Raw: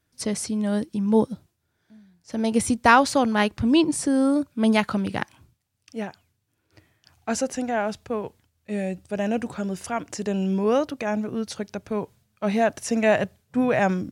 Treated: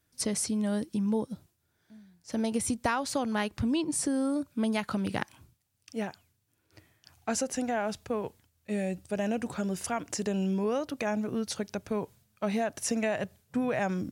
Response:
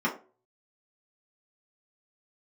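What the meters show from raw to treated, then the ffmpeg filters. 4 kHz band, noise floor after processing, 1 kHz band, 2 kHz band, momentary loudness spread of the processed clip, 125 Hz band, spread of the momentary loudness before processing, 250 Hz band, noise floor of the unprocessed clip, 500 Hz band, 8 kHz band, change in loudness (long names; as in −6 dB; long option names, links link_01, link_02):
−6.5 dB, −75 dBFS, −10.0 dB, −9.5 dB, 8 LU, −5.5 dB, 13 LU, −7.0 dB, −74 dBFS, −7.5 dB, −1.5 dB, −7.5 dB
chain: -af "highshelf=frequency=7100:gain=6.5,acompressor=threshold=-24dB:ratio=6,volume=-2dB"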